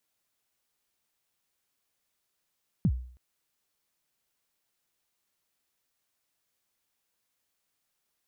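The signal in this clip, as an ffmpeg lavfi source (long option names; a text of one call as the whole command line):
ffmpeg -f lavfi -i "aevalsrc='0.126*pow(10,-3*t/0.52)*sin(2*PI*(220*0.062/log(62/220)*(exp(log(62/220)*min(t,0.062)/0.062)-1)+62*max(t-0.062,0)))':duration=0.32:sample_rate=44100" out.wav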